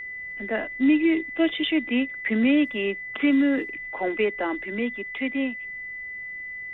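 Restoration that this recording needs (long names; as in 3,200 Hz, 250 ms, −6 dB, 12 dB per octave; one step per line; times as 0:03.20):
notch filter 2,000 Hz, Q 30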